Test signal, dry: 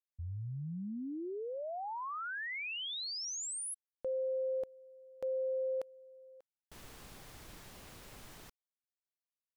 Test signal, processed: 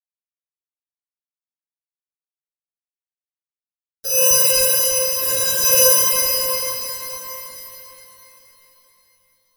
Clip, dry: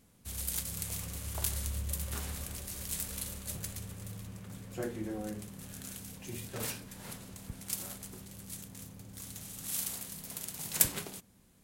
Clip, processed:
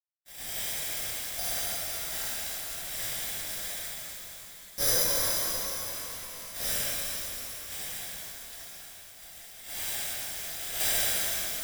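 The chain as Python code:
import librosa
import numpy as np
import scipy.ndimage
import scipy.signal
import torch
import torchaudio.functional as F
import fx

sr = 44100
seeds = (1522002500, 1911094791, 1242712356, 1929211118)

p1 = scipy.signal.sosfilt(scipy.signal.butter(4, 380.0, 'highpass', fs=sr, output='sos'), x)
p2 = fx.quant_dither(p1, sr, seeds[0], bits=6, dither='none')
p3 = fx.wow_flutter(p2, sr, seeds[1], rate_hz=2.1, depth_cents=15.0)
p4 = fx.fixed_phaser(p3, sr, hz=1100.0, stages=6)
p5 = p4 + fx.room_flutter(p4, sr, wall_m=10.9, rt60_s=0.55, dry=0)
p6 = fx.lpc_vocoder(p5, sr, seeds[2], excitation='whisper', order=10)
p7 = (np.kron(scipy.signal.resample_poly(p6, 1, 8), np.eye(8)[0]) * 8)[:len(p6)]
p8 = fx.rev_shimmer(p7, sr, seeds[3], rt60_s=3.9, semitones=12, shimmer_db=-8, drr_db=-11.5)
y = F.gain(torch.from_numpy(p8), -1.0).numpy()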